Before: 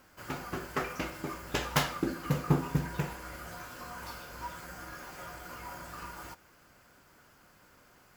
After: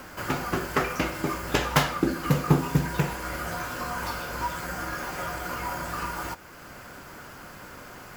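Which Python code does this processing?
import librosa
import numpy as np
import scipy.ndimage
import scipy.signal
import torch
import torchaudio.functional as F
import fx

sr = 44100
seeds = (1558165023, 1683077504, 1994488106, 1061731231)

y = fx.band_squash(x, sr, depth_pct=40)
y = F.gain(torch.from_numpy(y), 9.0).numpy()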